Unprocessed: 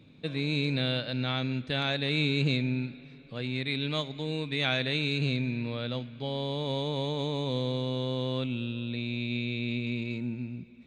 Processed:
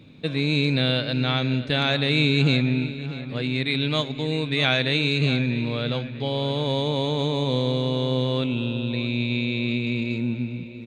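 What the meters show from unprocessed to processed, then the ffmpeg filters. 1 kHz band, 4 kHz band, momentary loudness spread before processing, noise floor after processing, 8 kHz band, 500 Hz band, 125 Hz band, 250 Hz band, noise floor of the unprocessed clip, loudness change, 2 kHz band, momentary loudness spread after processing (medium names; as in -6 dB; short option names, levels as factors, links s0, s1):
+7.0 dB, +7.0 dB, 8 LU, -36 dBFS, no reading, +7.5 dB, +7.5 dB, +7.5 dB, -50 dBFS, +7.0 dB, +7.0 dB, 7 LU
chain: -filter_complex "[0:a]asplit=2[s0][s1];[s1]adelay=641,lowpass=f=3100:p=1,volume=0.224,asplit=2[s2][s3];[s3]adelay=641,lowpass=f=3100:p=1,volume=0.49,asplit=2[s4][s5];[s5]adelay=641,lowpass=f=3100:p=1,volume=0.49,asplit=2[s6][s7];[s7]adelay=641,lowpass=f=3100:p=1,volume=0.49,asplit=2[s8][s9];[s9]adelay=641,lowpass=f=3100:p=1,volume=0.49[s10];[s0][s2][s4][s6][s8][s10]amix=inputs=6:normalize=0,volume=2.24"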